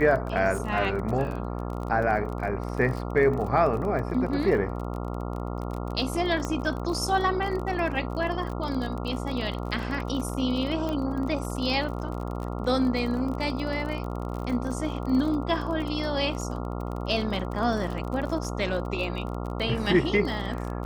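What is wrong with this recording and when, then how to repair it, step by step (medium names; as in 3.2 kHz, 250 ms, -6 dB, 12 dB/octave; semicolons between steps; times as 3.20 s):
buzz 60 Hz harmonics 23 -32 dBFS
crackle 31 per s -32 dBFS
6.45 s: pop -17 dBFS
10.89 s: pop -19 dBFS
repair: de-click; de-hum 60 Hz, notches 23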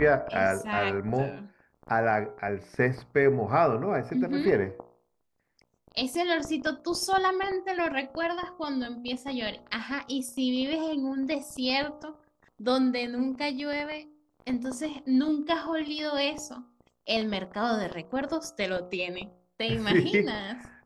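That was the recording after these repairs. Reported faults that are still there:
nothing left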